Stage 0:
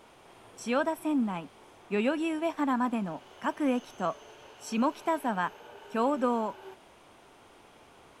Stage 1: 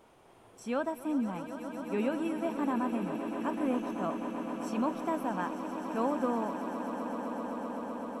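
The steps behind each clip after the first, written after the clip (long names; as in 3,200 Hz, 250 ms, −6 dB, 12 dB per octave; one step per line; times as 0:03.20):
parametric band 3,700 Hz −6.5 dB 3 octaves
echo that builds up and dies away 128 ms, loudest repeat 8, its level −13 dB
level −3 dB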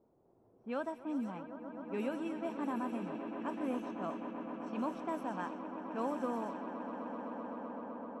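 low-shelf EQ 66 Hz −10 dB
low-pass that shuts in the quiet parts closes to 430 Hz, open at −27 dBFS
level −5.5 dB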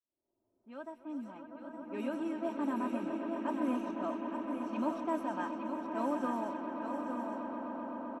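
fade in at the beginning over 2.71 s
comb filter 3.2 ms, depth 68%
single-tap delay 863 ms −7 dB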